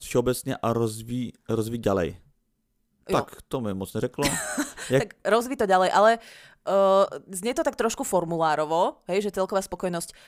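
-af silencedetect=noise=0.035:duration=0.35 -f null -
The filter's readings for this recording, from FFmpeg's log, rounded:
silence_start: 2.10
silence_end: 3.09 | silence_duration: 0.99
silence_start: 6.16
silence_end: 6.67 | silence_duration: 0.51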